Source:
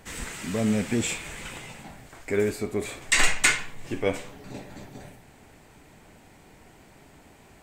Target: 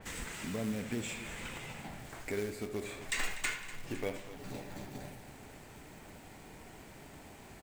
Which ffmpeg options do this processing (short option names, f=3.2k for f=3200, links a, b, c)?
-filter_complex "[0:a]acrusher=bits=3:mode=log:mix=0:aa=0.000001,acompressor=threshold=-43dB:ratio=2,asplit=2[a][b];[b]aecho=0:1:78|245|509:0.224|0.178|0.119[c];[a][c]amix=inputs=2:normalize=0,adynamicequalizer=threshold=0.002:dfrequency=4300:dqfactor=0.7:tfrequency=4300:tqfactor=0.7:attack=5:release=100:ratio=0.375:range=2:mode=cutabove:tftype=highshelf"